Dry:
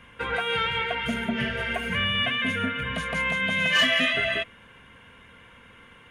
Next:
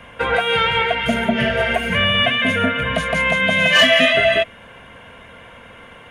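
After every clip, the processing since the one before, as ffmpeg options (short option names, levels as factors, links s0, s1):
-filter_complex "[0:a]equalizer=f=650:t=o:w=0.64:g=11.5,acrossover=split=380|1400[s0][s1][s2];[s1]alimiter=limit=0.1:level=0:latency=1:release=329[s3];[s0][s3][s2]amix=inputs=3:normalize=0,volume=2.51"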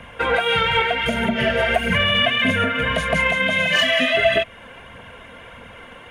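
-af "alimiter=limit=0.335:level=0:latency=1:release=178,aphaser=in_gain=1:out_gain=1:delay=4.2:decay=0.37:speed=1.6:type=triangular"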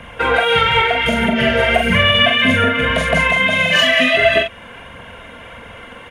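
-filter_complex "[0:a]asplit=2[s0][s1];[s1]adelay=43,volume=0.562[s2];[s0][s2]amix=inputs=2:normalize=0,volume=1.5"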